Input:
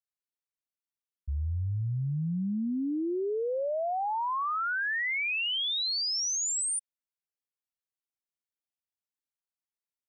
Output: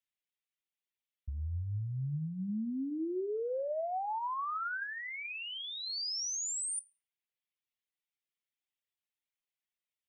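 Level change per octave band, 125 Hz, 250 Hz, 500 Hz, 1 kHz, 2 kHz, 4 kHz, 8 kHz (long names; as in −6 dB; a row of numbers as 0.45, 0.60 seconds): −5.5, −5.5, −4.5, −5.5, −9.5, −9.0, −6.0 decibels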